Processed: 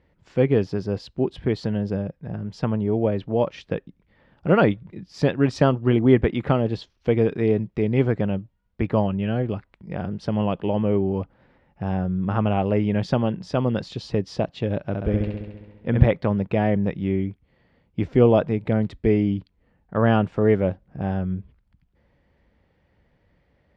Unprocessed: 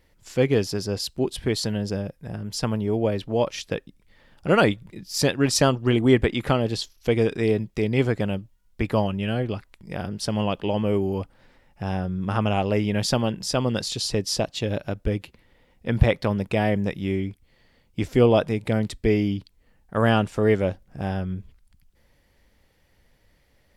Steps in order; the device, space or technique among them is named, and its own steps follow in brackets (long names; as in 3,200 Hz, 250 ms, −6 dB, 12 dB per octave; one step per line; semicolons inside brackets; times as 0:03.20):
high-pass filter 47 Hz
phone in a pocket (low-pass filter 3,400 Hz 12 dB per octave; parametric band 170 Hz +3.5 dB 0.4 octaves; high-shelf EQ 2,000 Hz −9 dB)
0:14.84–0:16.06: flutter between parallel walls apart 11.5 metres, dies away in 1.2 s
level +1.5 dB